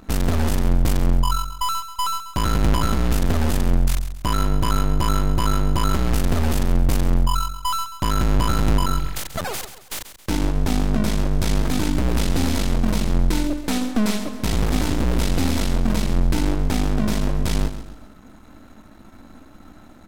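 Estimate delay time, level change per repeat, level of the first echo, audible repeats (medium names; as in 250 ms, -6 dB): 135 ms, -8.0 dB, -12.0 dB, 3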